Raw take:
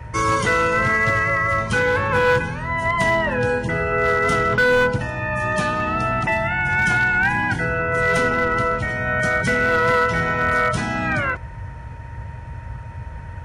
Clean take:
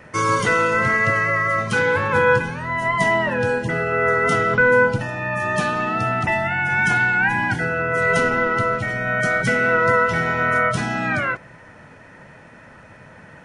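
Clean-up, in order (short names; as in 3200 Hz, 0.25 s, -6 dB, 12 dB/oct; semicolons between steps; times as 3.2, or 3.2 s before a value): clip repair -12 dBFS; notch 930 Hz, Q 30; noise print and reduce 12 dB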